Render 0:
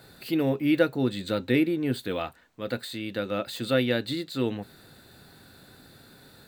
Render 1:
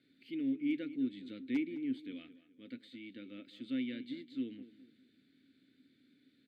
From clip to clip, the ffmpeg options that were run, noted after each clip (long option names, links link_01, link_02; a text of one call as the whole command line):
ffmpeg -i in.wav -filter_complex "[0:a]asplit=3[link_01][link_02][link_03];[link_01]bandpass=frequency=270:width_type=q:width=8,volume=0dB[link_04];[link_02]bandpass=frequency=2290:width_type=q:width=8,volume=-6dB[link_05];[link_03]bandpass=frequency=3010:width_type=q:width=8,volume=-9dB[link_06];[link_04][link_05][link_06]amix=inputs=3:normalize=0,asoftclip=type=hard:threshold=-21.5dB,asplit=2[link_07][link_08];[link_08]adelay=208,lowpass=frequency=3100:poles=1,volume=-15dB,asplit=2[link_09][link_10];[link_10]adelay=208,lowpass=frequency=3100:poles=1,volume=0.36,asplit=2[link_11][link_12];[link_12]adelay=208,lowpass=frequency=3100:poles=1,volume=0.36[link_13];[link_07][link_09][link_11][link_13]amix=inputs=4:normalize=0,volume=-4.5dB" out.wav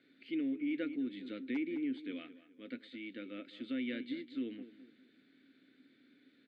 ffmpeg -i in.wav -af "alimiter=level_in=8.5dB:limit=-24dB:level=0:latency=1:release=67,volume=-8.5dB,bandpass=frequency=960:width_type=q:width=0.63:csg=0,volume=9.5dB" out.wav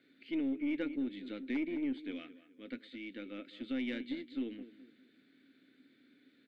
ffmpeg -i in.wav -af "aeval=exprs='0.0501*(cos(1*acos(clip(val(0)/0.0501,-1,1)))-cos(1*PI/2))+0.002*(cos(4*acos(clip(val(0)/0.0501,-1,1)))-cos(4*PI/2))+0.000631*(cos(7*acos(clip(val(0)/0.0501,-1,1)))-cos(7*PI/2))':channel_layout=same,volume=1dB" out.wav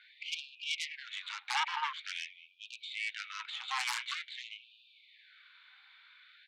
ffmpeg -i in.wav -af "highpass=frequency=190:width=0.5412,highpass=frequency=190:width=1.3066,equalizer=frequency=230:width_type=q:width=4:gain=-9,equalizer=frequency=400:width_type=q:width=4:gain=-5,equalizer=frequency=1000:width_type=q:width=4:gain=8,equalizer=frequency=1800:width_type=q:width=4:gain=-5,lowpass=frequency=4200:width=0.5412,lowpass=frequency=4200:width=1.3066,aeval=exprs='0.0447*(cos(1*acos(clip(val(0)/0.0447,-1,1)))-cos(1*PI/2))+0.02*(cos(3*acos(clip(val(0)/0.0447,-1,1)))-cos(3*PI/2))+0.0112*(cos(7*acos(clip(val(0)/0.0447,-1,1)))-cos(7*PI/2))+0.00708*(cos(8*acos(clip(val(0)/0.0447,-1,1)))-cos(8*PI/2))':channel_layout=same,afftfilt=real='re*gte(b*sr/1024,740*pow(2400/740,0.5+0.5*sin(2*PI*0.47*pts/sr)))':imag='im*gte(b*sr/1024,740*pow(2400/740,0.5+0.5*sin(2*PI*0.47*pts/sr)))':win_size=1024:overlap=0.75,volume=9dB" out.wav